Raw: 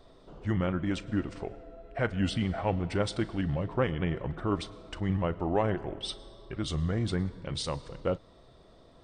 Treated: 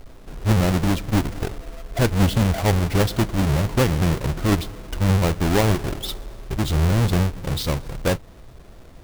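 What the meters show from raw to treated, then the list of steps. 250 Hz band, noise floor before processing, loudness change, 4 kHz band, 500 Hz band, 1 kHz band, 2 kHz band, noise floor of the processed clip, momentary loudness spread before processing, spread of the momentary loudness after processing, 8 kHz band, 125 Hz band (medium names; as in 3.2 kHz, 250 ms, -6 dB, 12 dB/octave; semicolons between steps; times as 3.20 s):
+9.0 dB, -57 dBFS, +10.0 dB, +9.5 dB, +7.5 dB, +8.5 dB, +10.0 dB, -44 dBFS, 10 LU, 11 LU, +15.0 dB, +12.5 dB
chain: square wave that keeps the level; bass shelf 110 Hz +8.5 dB; trim +3.5 dB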